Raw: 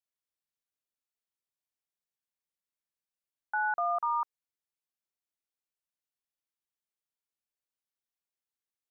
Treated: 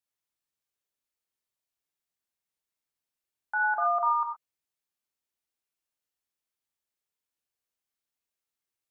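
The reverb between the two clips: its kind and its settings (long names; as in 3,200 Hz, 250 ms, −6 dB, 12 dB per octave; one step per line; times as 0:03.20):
reverb whose tail is shaped and stops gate 140 ms flat, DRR 1.5 dB
level +1 dB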